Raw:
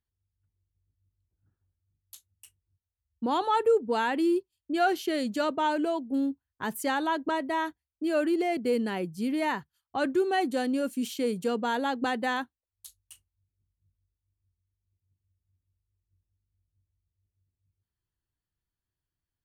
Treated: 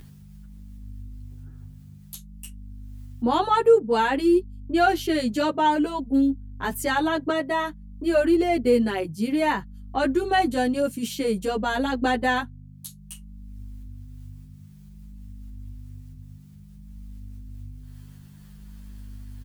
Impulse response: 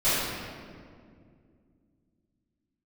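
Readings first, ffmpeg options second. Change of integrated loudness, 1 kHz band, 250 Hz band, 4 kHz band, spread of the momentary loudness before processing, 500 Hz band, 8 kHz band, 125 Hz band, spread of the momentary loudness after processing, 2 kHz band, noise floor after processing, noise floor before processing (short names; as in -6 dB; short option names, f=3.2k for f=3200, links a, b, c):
+5.5 dB, +5.0 dB, +5.5 dB, +5.0 dB, 8 LU, +5.5 dB, +5.5 dB, +12.0 dB, 22 LU, +5.0 dB, -47 dBFS, under -85 dBFS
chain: -filter_complex "[0:a]acompressor=mode=upward:threshold=-38dB:ratio=2.5,aeval=exprs='val(0)+0.00562*(sin(2*PI*50*n/s)+sin(2*PI*2*50*n/s)/2+sin(2*PI*3*50*n/s)/3+sin(2*PI*4*50*n/s)/4+sin(2*PI*5*50*n/s)/5)':c=same,asplit=2[a][b];[b]adelay=10.4,afreqshift=-0.55[c];[a][c]amix=inputs=2:normalize=1,volume=8dB"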